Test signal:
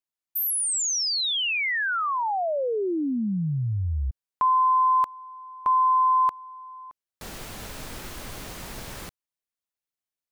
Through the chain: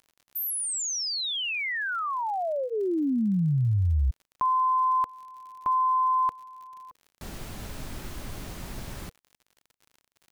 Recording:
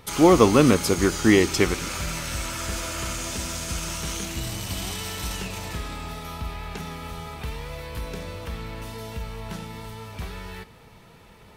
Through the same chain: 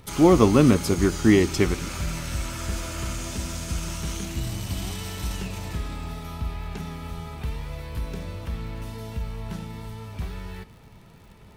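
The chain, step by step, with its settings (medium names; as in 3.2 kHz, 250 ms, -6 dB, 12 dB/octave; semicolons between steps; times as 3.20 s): bass shelf 370 Hz +8 dB; band-stop 480 Hz, Q 12; crackle 72 per s -39 dBFS; trim -4.5 dB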